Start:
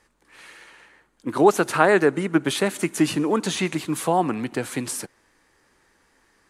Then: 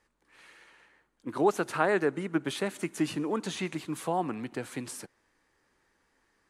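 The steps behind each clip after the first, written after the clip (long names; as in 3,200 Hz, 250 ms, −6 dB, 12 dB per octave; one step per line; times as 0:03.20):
high-shelf EQ 6,700 Hz −4.5 dB
level −9 dB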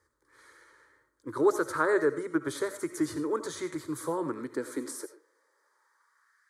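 phaser with its sweep stopped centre 730 Hz, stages 6
high-pass filter sweep 79 Hz → 1,700 Hz, 0:03.65–0:06.49
convolution reverb RT60 0.25 s, pre-delay 50 ms, DRR 10 dB
level +2 dB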